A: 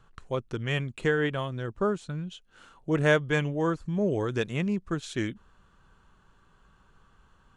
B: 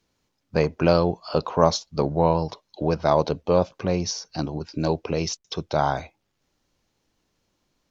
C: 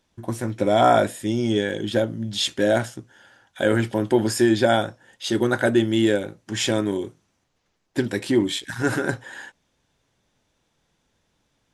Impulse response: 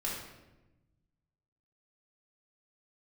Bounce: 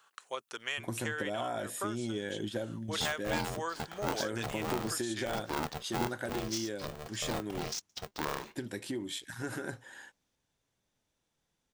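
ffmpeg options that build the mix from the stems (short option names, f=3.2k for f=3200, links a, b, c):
-filter_complex "[0:a]highpass=760,highshelf=f=2.8k:g=5,volume=-0.5dB,asplit=2[a][b];[1:a]highshelf=f=3.6k:g=9.5,dynaudnorm=f=120:g=21:m=5.5dB,aeval=exprs='val(0)*sgn(sin(2*PI*300*n/s))':c=same,adelay=2450,volume=-17.5dB[c];[2:a]acompressor=threshold=-19dB:ratio=6,adelay=600,volume=-5.5dB[d];[b]apad=whole_len=544159[e];[d][e]sidechaingate=range=-7dB:threshold=-57dB:ratio=16:detection=peak[f];[a][f]amix=inputs=2:normalize=0,highshelf=f=8.5k:g=9.5,acompressor=threshold=-32dB:ratio=6,volume=0dB[g];[c][g]amix=inputs=2:normalize=0"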